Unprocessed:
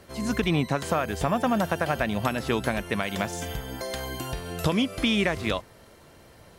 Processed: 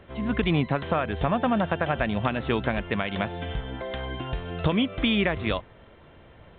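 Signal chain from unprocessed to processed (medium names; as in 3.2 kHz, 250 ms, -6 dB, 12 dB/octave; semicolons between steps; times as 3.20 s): bass shelf 74 Hz +6.5 dB; µ-law 64 kbps 8 kHz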